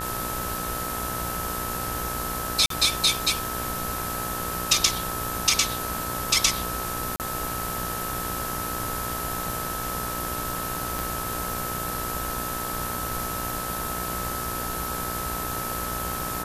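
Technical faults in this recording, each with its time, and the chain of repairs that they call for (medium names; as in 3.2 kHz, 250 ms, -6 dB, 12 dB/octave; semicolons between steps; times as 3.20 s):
buzz 60 Hz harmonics 30 -35 dBFS
whine 1.3 kHz -33 dBFS
2.66–2.70 s: dropout 43 ms
7.16–7.20 s: dropout 38 ms
10.99 s: pop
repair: de-click; de-hum 60 Hz, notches 30; band-stop 1.3 kHz, Q 30; interpolate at 2.66 s, 43 ms; interpolate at 7.16 s, 38 ms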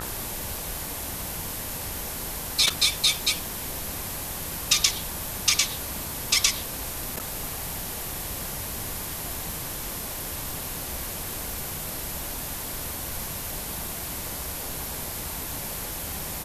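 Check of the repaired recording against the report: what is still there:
10.99 s: pop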